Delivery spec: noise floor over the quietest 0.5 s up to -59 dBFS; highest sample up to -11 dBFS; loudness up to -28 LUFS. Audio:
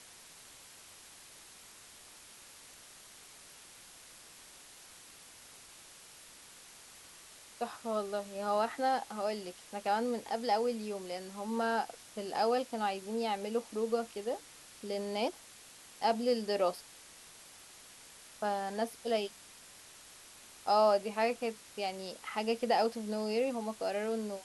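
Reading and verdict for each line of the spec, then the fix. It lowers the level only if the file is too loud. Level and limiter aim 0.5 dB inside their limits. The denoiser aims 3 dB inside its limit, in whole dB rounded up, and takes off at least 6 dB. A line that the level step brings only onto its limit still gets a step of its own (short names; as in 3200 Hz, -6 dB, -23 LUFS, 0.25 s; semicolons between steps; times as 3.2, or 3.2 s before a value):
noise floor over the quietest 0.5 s -55 dBFS: fail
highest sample -17.5 dBFS: OK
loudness -34.5 LUFS: OK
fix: denoiser 7 dB, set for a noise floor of -55 dBFS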